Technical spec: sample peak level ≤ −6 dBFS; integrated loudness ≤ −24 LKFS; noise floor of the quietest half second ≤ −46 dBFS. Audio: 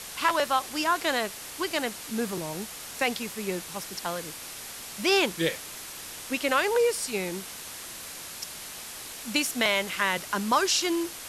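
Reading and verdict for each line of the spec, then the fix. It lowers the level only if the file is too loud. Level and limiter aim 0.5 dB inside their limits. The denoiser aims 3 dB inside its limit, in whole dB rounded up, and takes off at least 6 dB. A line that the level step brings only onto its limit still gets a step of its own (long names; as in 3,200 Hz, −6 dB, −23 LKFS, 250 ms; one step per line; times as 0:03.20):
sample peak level −10.0 dBFS: in spec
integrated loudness −28.5 LKFS: in spec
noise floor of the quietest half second −41 dBFS: out of spec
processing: broadband denoise 8 dB, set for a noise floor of −41 dBFS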